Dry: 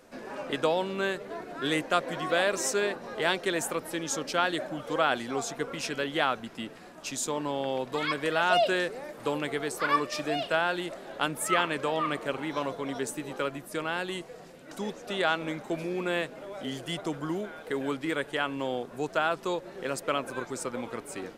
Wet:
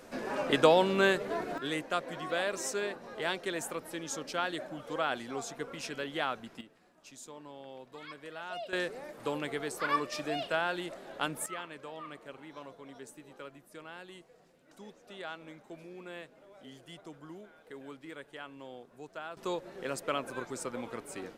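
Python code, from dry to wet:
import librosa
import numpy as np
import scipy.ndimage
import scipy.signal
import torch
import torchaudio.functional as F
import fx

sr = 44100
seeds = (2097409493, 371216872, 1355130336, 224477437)

y = fx.gain(x, sr, db=fx.steps((0.0, 4.0), (1.58, -6.5), (6.61, -17.0), (8.73, -4.5), (11.46, -15.5), (19.37, -4.0)))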